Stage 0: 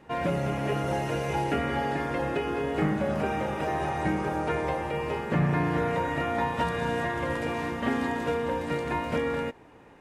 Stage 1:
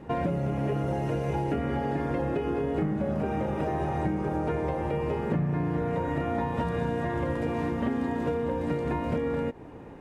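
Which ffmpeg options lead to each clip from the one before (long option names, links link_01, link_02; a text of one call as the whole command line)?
ffmpeg -i in.wav -af "tiltshelf=frequency=790:gain=6.5,acompressor=threshold=-31dB:ratio=5,volume=5dB" out.wav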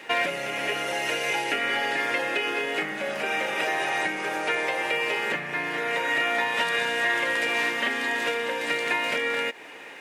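ffmpeg -i in.wav -af "highpass=660,highshelf=frequency=1500:width_type=q:width=1.5:gain=11.5,volume=7dB" out.wav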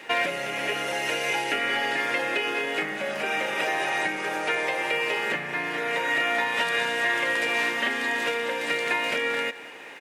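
ffmpeg -i in.wav -af "aecho=1:1:188:0.15" out.wav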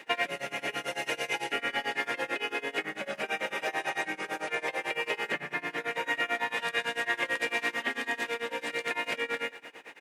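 ffmpeg -i in.wav -af "tremolo=f=9:d=0.94,volume=-2dB" out.wav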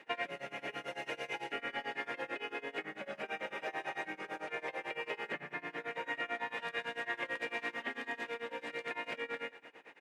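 ffmpeg -i in.wav -af "lowpass=frequency=2500:poles=1,volume=-6.5dB" out.wav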